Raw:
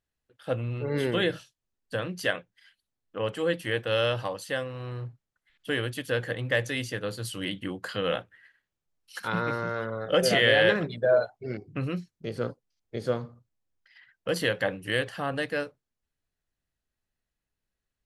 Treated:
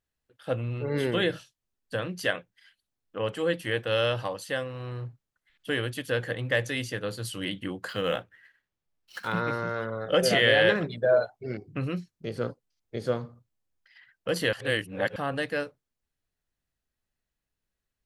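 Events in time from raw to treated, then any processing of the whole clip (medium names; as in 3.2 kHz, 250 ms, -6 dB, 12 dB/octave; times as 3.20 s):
7.89–9.37 s: median filter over 5 samples
14.53–15.16 s: reverse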